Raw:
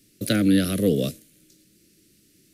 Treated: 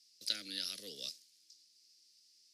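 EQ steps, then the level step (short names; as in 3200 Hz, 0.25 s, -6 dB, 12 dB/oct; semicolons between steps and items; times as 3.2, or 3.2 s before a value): band-pass 5000 Hz, Q 5.4; +4.5 dB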